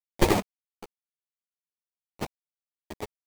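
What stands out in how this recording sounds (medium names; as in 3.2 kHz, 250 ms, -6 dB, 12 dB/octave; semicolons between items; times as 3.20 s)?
aliases and images of a low sample rate 1.5 kHz, jitter 20%; random-step tremolo 4.1 Hz, depth 95%; a quantiser's noise floor 8-bit, dither none; a shimmering, thickened sound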